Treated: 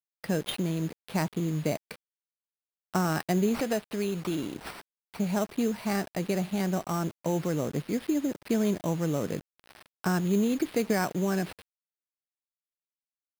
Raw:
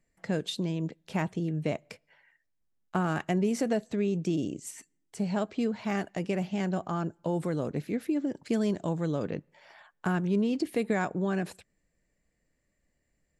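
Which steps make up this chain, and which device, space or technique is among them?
3.59–4.56 s: tilt EQ +2 dB/octave; early 8-bit sampler (sample-rate reducer 6.8 kHz, jitter 0%; bit crusher 8-bit); trim +1.5 dB

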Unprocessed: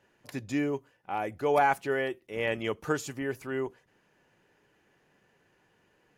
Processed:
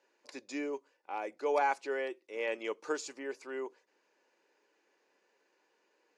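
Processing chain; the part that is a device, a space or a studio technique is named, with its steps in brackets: phone speaker on a table (cabinet simulation 350–7600 Hz, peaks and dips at 400 Hz -3 dB, 710 Hz -7 dB, 1.3 kHz -5 dB, 1.8 kHz -6 dB, 3.1 kHz -7 dB, 4.6 kHz +3 dB); trim -1.5 dB

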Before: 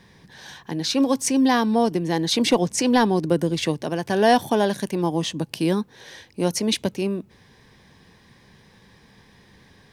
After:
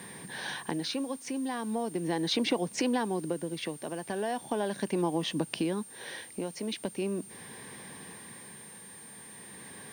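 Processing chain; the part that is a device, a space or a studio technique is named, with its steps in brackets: medium wave at night (band-pass 180–3800 Hz; compression 5:1, threshold -35 dBFS, peak gain reduction 20.5 dB; tremolo 0.39 Hz, depth 54%; whistle 9 kHz -55 dBFS; white noise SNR 25 dB); trim +7.5 dB

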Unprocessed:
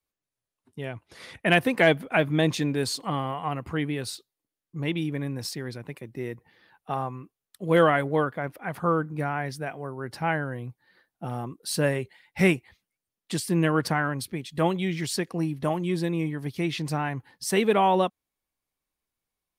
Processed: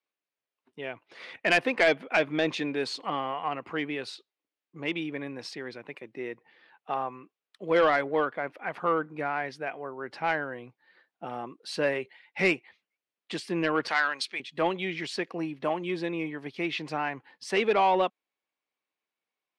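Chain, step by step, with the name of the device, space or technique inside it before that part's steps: intercom (band-pass 330–3900 Hz; peaking EQ 2.5 kHz +4 dB 0.58 oct; saturation -14 dBFS, distortion -16 dB); 13.88–14.40 s: frequency weighting ITU-R 468

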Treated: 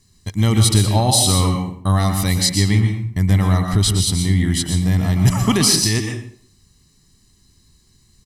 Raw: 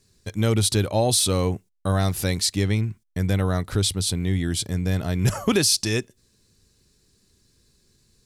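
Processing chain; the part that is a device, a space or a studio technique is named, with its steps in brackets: microphone above a desk (comb 1 ms, depth 63%; reverberation RT60 0.55 s, pre-delay 110 ms, DRR 3.5 dB); trim +3 dB

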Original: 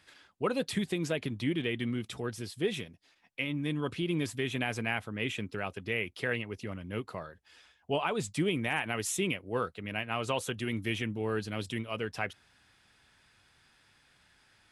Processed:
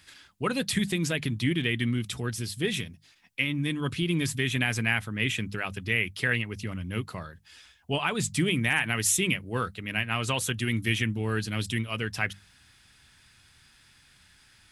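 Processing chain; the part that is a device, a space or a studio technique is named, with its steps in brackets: hum notches 50/100/150/200 Hz; dynamic bell 1.8 kHz, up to +4 dB, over -46 dBFS, Q 2.7; smiley-face EQ (bass shelf 190 Hz +5.5 dB; peaking EQ 550 Hz -8.5 dB 2 oct; treble shelf 5.6 kHz +6 dB); trim +6 dB

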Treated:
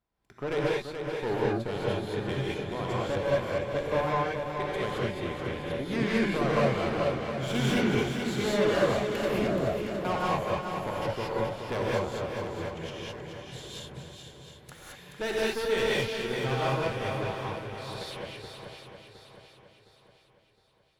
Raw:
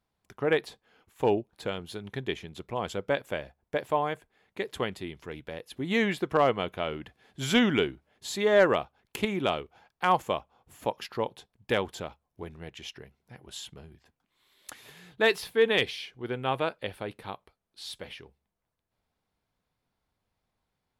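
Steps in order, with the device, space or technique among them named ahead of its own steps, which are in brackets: 9.28–10.05 s: steep low-pass 690 Hz 72 dB/octave; tube preamp driven hard (valve stage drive 28 dB, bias 0.7; treble shelf 3.5 kHz -7 dB); shuffle delay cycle 713 ms, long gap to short 1.5:1, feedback 40%, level -6.5 dB; gated-style reverb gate 240 ms rising, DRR -6 dB

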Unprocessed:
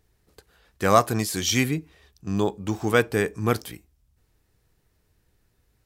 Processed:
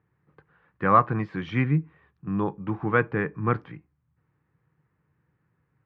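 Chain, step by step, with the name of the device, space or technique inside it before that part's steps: bass cabinet (cabinet simulation 89–2000 Hz, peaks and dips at 91 Hz -5 dB, 150 Hz +9 dB, 230 Hz -4 dB, 410 Hz -6 dB, 660 Hz -9 dB, 1.1 kHz +4 dB)

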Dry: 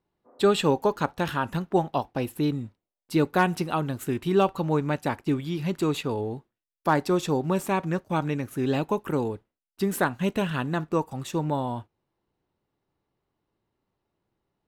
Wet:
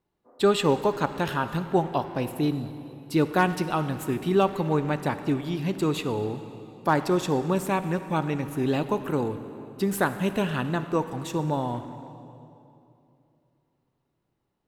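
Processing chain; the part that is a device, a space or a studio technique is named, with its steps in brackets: saturated reverb return (on a send at -8.5 dB: reverberation RT60 2.7 s, pre-delay 51 ms + saturation -23 dBFS, distortion -11 dB)

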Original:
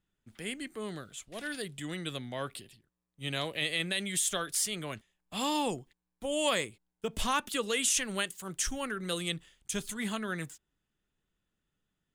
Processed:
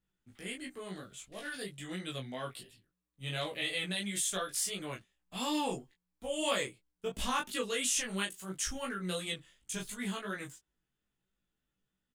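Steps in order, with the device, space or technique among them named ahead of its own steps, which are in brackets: double-tracked vocal (doubling 16 ms -2 dB; chorus 2.9 Hz, delay 19.5 ms, depth 2.7 ms); trim -2 dB

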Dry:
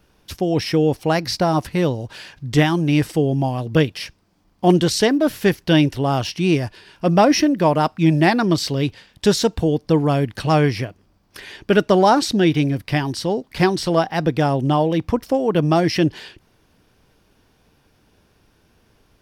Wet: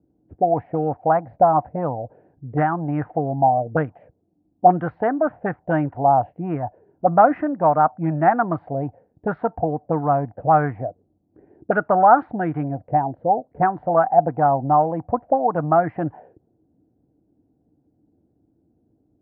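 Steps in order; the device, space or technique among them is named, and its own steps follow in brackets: envelope filter bass rig (touch-sensitive low-pass 320–1300 Hz up, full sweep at -12.5 dBFS; cabinet simulation 83–2000 Hz, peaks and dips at 200 Hz -4 dB, 380 Hz -9 dB, 730 Hz +10 dB, 1.1 kHz -6 dB); trim -5.5 dB

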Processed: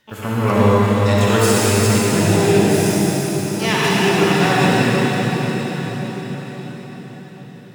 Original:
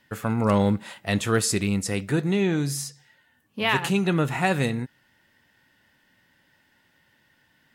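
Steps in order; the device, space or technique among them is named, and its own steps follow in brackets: shimmer-style reverb (harmony voices +12 st -7 dB; reverberation RT60 5.8 s, pre-delay 51 ms, DRR -7.5 dB)

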